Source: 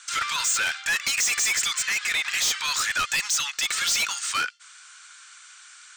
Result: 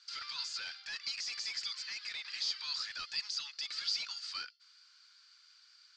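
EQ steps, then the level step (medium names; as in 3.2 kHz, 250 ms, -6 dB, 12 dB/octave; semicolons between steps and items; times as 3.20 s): four-pole ladder low-pass 4.9 kHz, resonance 85%; -8.5 dB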